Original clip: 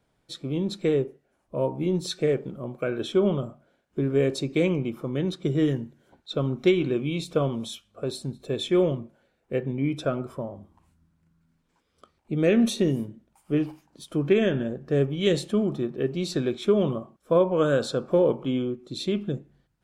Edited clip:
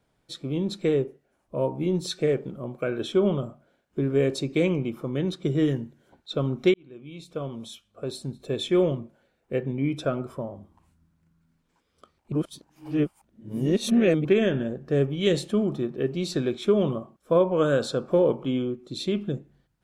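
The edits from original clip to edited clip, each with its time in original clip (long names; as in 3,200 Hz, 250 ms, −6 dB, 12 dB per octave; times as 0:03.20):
0:06.74–0:08.47: fade in
0:12.32–0:14.25: reverse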